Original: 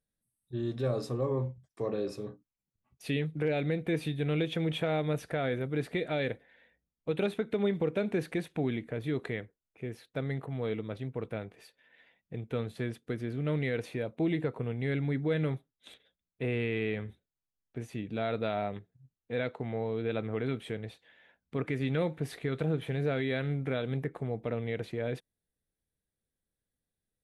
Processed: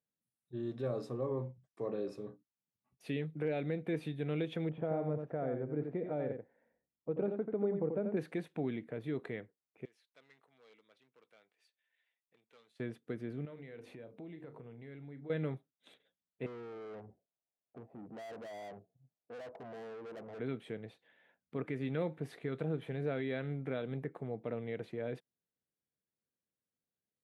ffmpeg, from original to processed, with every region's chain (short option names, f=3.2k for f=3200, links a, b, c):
-filter_complex "[0:a]asettb=1/sr,asplit=3[a][b][c];[a]atrim=end=4.694[d];[b]atrim=start=4.69:end=8.17,asetpts=PTS-STARTPTS,afade=t=in:d=0.004:c=qsin,afade=t=out:st=3.476:d=0.004:c=qsin,lowpass=1k,aecho=1:1:87:0.501,atrim=end_sample=153468[e];[c]atrim=start=8.166[f];[d][e]acrossfade=d=0.004:c1=hsin:c2=qsin[g];[g][f]acrossfade=d=0.004:c1=qsin:c2=hsin,asettb=1/sr,asplit=3[h][i][j];[h]atrim=end=9.854[k];[i]atrim=start=9.85:end=12.8,asetpts=PTS-STARTPTS,afade=t=in:d=0.004:c=qsin,afade=t=out:st=2.946:d=0.004:c=qsin,asoftclip=type=hard:threshold=-29.5dB,highpass=110,lowpass=6.2k,aderivative[l];[j]atrim=start=12.796[m];[k][l]acrossfade=d=0.004:c1=hsin:c2=qsin[n];[n][m]acrossfade=d=0.004:c1=qsin:c2=hsin,asettb=1/sr,asplit=3[o][p][q];[o]atrim=end=13.454[r];[p]atrim=start=13.45:end=15.3,asetpts=PTS-STARTPTS,afade=t=in:d=0.004:c=qsin,afade=t=out:st=1.846:d=0.004:c=qsin,bandreject=f=50:t=h:w=6,bandreject=f=100:t=h:w=6,bandreject=f=150:t=h:w=6,bandreject=f=200:t=h:w=6,bandreject=f=250:t=h:w=6,bandreject=f=300:t=h:w=6,bandreject=f=350:t=h:w=6,bandreject=f=400:t=h:w=6,bandreject=f=450:t=h:w=6,asplit=2[s][t];[t]adelay=35,volume=-13dB[u];[s][u]amix=inputs=2:normalize=0,atrim=end_sample=81585,acompressor=threshold=-42dB:ratio=4:attack=3.2:release=140:knee=1:detection=peak[v];[q]atrim=start=15.296[w];[r][v]acrossfade=d=0.004:c1=hsin:c2=qsin[x];[x][w]acrossfade=d=0.004:c1=qsin:c2=hsin,asettb=1/sr,asplit=3[y][z][aa];[y]atrim=end=16.464[ab];[z]atrim=start=16.46:end=20.39,asetpts=PTS-STARTPTS,afade=t=in:d=0.004:c=qsin,afade=t=out:st=3.926:d=0.004:c=qsin,lowpass=f=680:t=q:w=4.6,aeval=exprs='(tanh(100*val(0)+0.35)-tanh(0.35))/100':c=same[ac];[aa]atrim=start=20.386[ad];[ab][ac]acrossfade=d=0.004:c1=hsin:c2=qsin[ae];[ae][ad]acrossfade=d=0.004:c1=qsin:c2=hsin,highpass=140,highshelf=f=2.6k:g=-9,volume=-4.5dB"